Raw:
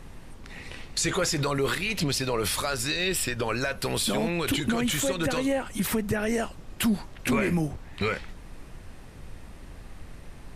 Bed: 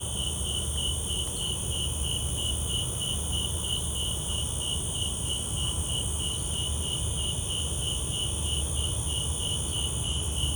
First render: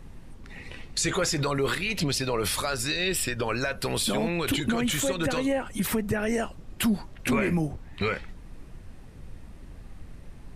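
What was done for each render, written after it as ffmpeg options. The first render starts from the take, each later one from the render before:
-af "afftdn=nr=6:nf=-45"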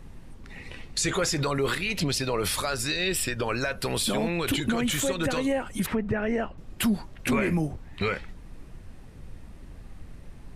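-filter_complex "[0:a]asettb=1/sr,asplit=3[s0][s1][s2];[s0]atrim=end=5.864[s3];[s1]atrim=start=5.86:end=6.58,asetpts=PTS-STARTPTS,afade=t=in:d=0.004:c=qsin,afade=t=out:st=0.716:d=0.004:c=qsin,lowpass=2500[s4];[s2]atrim=start=6.576[s5];[s3][s4]acrossfade=d=0.004:c1=hsin:c2=qsin[s6];[s6][s5]acrossfade=d=0.004:c1=qsin:c2=hsin"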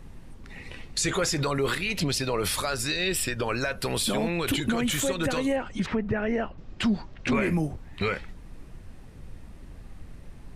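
-filter_complex "[0:a]asettb=1/sr,asplit=3[s0][s1][s2];[s0]atrim=end=5.564[s3];[s1]atrim=start=5.56:end=7.35,asetpts=PTS-STARTPTS,afade=t=in:d=0.004:c=qsin,afade=t=out:st=1.786:d=0.004:c=qsin,lowpass=f=6100:w=0.5412,lowpass=f=6100:w=1.3066[s4];[s2]atrim=start=7.346[s5];[s3][s4]acrossfade=d=0.004:c1=hsin:c2=qsin[s6];[s6][s5]acrossfade=d=0.004:c1=qsin:c2=hsin"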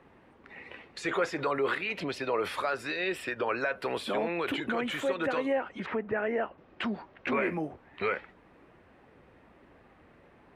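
-filter_complex "[0:a]highpass=68,acrossover=split=300 2800:gain=0.141 1 0.0794[s0][s1][s2];[s0][s1][s2]amix=inputs=3:normalize=0"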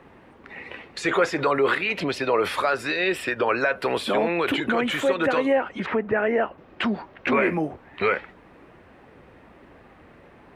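-af "volume=2.51"

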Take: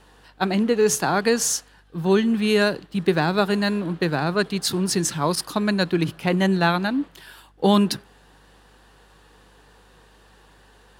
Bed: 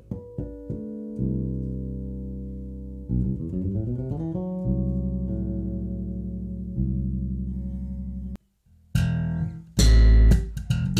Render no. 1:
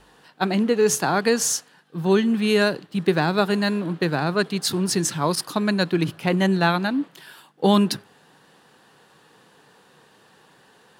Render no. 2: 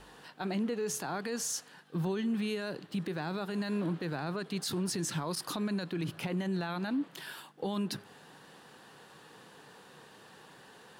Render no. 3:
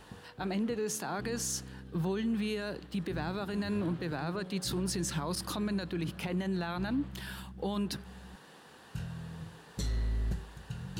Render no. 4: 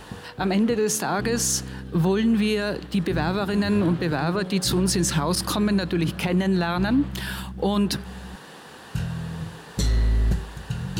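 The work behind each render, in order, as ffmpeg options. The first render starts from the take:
-af "bandreject=f=50:t=h:w=4,bandreject=f=100:t=h:w=4"
-af "acompressor=threshold=0.0447:ratio=12,alimiter=level_in=1.26:limit=0.0631:level=0:latency=1:release=16,volume=0.794"
-filter_complex "[1:a]volume=0.141[s0];[0:a][s0]amix=inputs=2:normalize=0"
-af "volume=3.76"

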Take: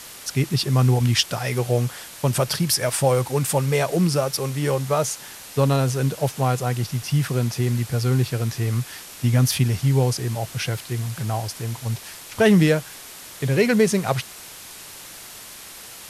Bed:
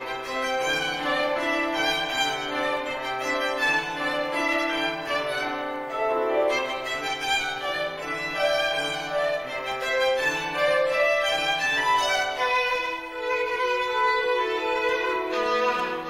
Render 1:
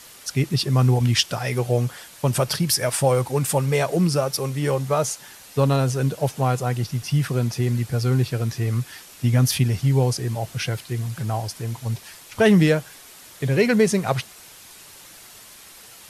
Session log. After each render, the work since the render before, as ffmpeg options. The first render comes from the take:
-af "afftdn=nr=6:nf=-40"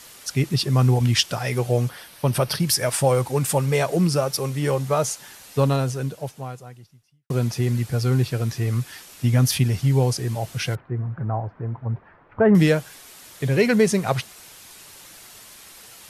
-filter_complex "[0:a]asettb=1/sr,asplit=3[s0][s1][s2];[s0]atrim=end=1.894[s3];[s1]atrim=start=1.89:end=2.6,asetpts=PTS-STARTPTS,afade=t=in:d=0.004:c=qsin,afade=t=out:st=0.706:d=0.004:c=qsin,equalizer=f=7200:w=4.6:g=-14[s4];[s2]atrim=start=2.596[s5];[s3][s4]acrossfade=d=0.004:c1=hsin:c2=qsin[s6];[s6][s5]acrossfade=d=0.004:c1=qsin:c2=hsin,asettb=1/sr,asplit=3[s7][s8][s9];[s7]atrim=end=10.754[s10];[s8]atrim=start=10.75:end=12.55,asetpts=PTS-STARTPTS,afade=t=in:d=0.004:c=qsin,afade=t=out:st=1.796:d=0.004:c=qsin,lowpass=f=1500:w=0.5412,lowpass=f=1500:w=1.3066[s11];[s9]atrim=start=12.546[s12];[s10][s11]acrossfade=d=0.004:c1=hsin:c2=qsin[s13];[s13][s12]acrossfade=d=0.004:c1=qsin:c2=hsin,asplit=2[s14][s15];[s14]atrim=end=7.3,asetpts=PTS-STARTPTS,afade=t=out:st=5.61:d=1.69:c=qua[s16];[s15]atrim=start=7.3,asetpts=PTS-STARTPTS,afade=t=in:d=0.004:c=hsin[s17];[s16][s17]concat=n=2:v=0:a=1"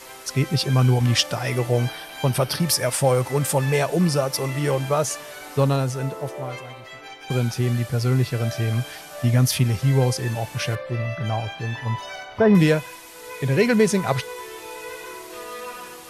-filter_complex "[1:a]volume=0.266[s0];[0:a][s0]amix=inputs=2:normalize=0"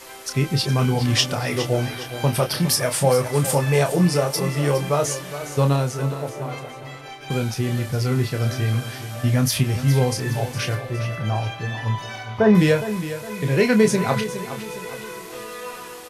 -filter_complex "[0:a]asplit=2[s0][s1];[s1]adelay=28,volume=0.447[s2];[s0][s2]amix=inputs=2:normalize=0,aecho=1:1:412|824|1236|1648:0.251|0.108|0.0464|0.02"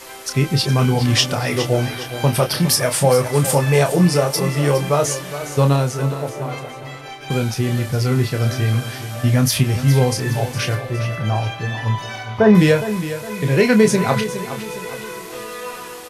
-af "volume=1.5,alimiter=limit=0.708:level=0:latency=1"

